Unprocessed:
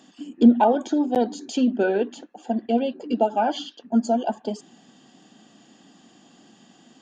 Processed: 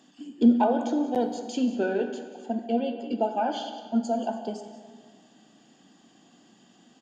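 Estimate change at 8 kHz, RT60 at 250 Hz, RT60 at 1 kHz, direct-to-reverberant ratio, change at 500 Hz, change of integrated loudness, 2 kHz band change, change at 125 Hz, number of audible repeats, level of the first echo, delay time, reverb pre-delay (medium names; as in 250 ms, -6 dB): no reading, 1.8 s, 1.7 s, 6.5 dB, -4.5 dB, -4.5 dB, -4.5 dB, no reading, 1, -16.5 dB, 181 ms, 12 ms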